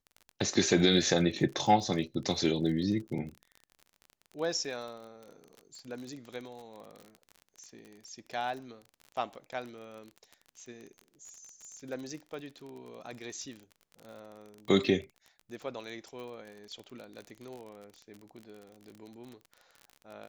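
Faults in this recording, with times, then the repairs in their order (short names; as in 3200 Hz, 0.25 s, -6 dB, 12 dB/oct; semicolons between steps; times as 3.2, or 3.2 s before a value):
crackle 33/s -39 dBFS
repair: de-click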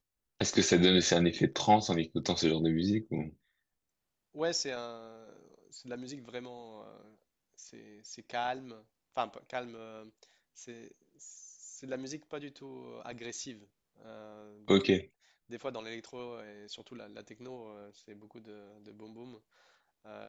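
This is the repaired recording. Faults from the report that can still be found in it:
none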